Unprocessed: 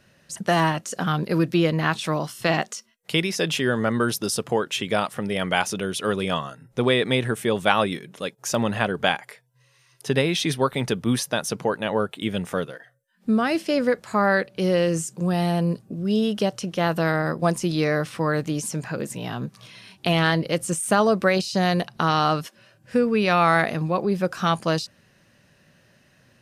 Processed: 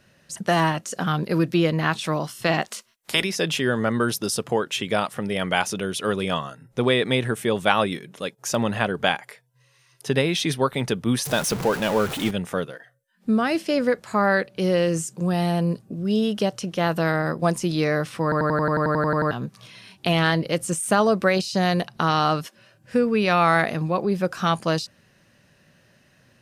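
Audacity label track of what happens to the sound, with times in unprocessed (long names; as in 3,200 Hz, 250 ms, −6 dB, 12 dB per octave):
2.640000	3.230000	ceiling on every frequency bin ceiling under each frame's peak by 20 dB
11.250000	12.310000	converter with a step at zero of −25.5 dBFS
18.230000	18.230000	stutter in place 0.09 s, 12 plays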